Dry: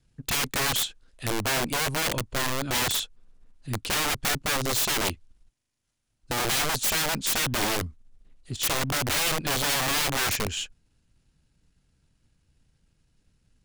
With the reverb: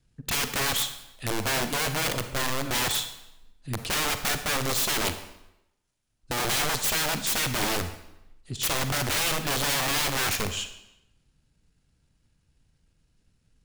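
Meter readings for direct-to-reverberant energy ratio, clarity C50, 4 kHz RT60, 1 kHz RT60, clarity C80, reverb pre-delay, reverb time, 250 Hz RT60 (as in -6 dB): 8.5 dB, 10.0 dB, 0.75 s, 0.90 s, 12.5 dB, 36 ms, 0.90 s, 0.85 s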